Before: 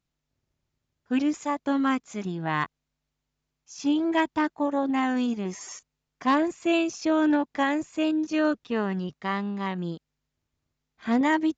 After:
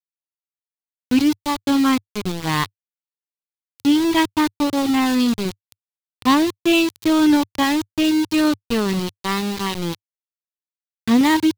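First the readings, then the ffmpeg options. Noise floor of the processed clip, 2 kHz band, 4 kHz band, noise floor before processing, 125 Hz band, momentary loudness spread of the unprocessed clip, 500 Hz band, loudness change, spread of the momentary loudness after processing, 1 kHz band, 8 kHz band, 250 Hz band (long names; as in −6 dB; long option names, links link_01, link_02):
below −85 dBFS, +5.5 dB, +13.5 dB, −83 dBFS, +7.0 dB, 10 LU, +4.0 dB, +7.0 dB, 8 LU, +5.0 dB, can't be measured, +7.5 dB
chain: -af "agate=range=-33dB:threshold=-40dB:ratio=3:detection=peak,aeval=exprs='val(0)*gte(abs(val(0)),0.0355)':channel_layout=same,equalizer=frequency=100:width_type=o:width=0.67:gain=11,equalizer=frequency=630:width_type=o:width=0.67:gain=-9,equalizer=frequency=1600:width_type=o:width=0.67:gain=-6,equalizer=frequency=4000:width_type=o:width=0.67:gain=6,volume=8.5dB"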